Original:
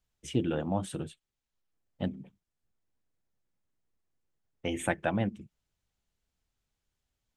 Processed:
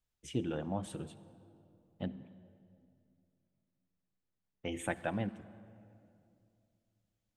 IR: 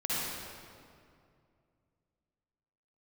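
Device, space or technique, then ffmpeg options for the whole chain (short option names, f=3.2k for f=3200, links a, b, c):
saturated reverb return: -filter_complex "[0:a]asplit=2[a][b];[1:a]atrim=start_sample=2205[c];[b][c]afir=irnorm=-1:irlink=0,asoftclip=type=tanh:threshold=-22.5dB,volume=-20dB[d];[a][d]amix=inputs=2:normalize=0,asettb=1/sr,asplit=3[e][f][g];[e]atrim=end=2.044[h];[f]atrim=start=2.04:end=4.72,asetpts=PTS-STARTPTS,afade=t=in:d=0.004:c=qsin,afade=t=out:st=2.676:d=0.004:c=qsin,lowpass=5.7k[i];[g]atrim=start=4.716[j];[h][i]acrossfade=d=0.004:c1=hsin:c2=qsin[k];[k][j]acrossfade=d=0.004:c1=qsin:c2=hsin,volume=-6.5dB"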